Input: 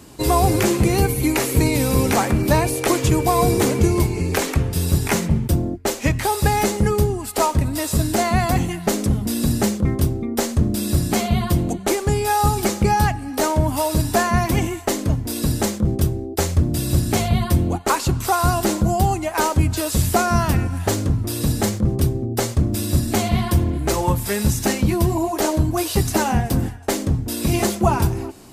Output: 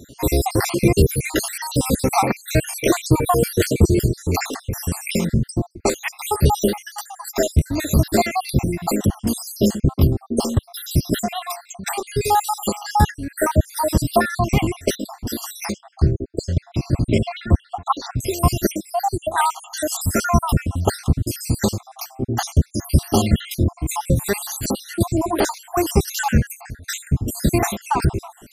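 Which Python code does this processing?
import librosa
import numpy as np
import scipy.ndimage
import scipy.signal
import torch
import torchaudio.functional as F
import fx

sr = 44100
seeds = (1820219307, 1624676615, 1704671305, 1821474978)

y = fx.spec_dropout(x, sr, seeds[0], share_pct=68)
y = fx.air_absorb(y, sr, metres=130.0, at=(15.72, 18.19))
y = F.gain(torch.from_numpy(y), 4.0).numpy()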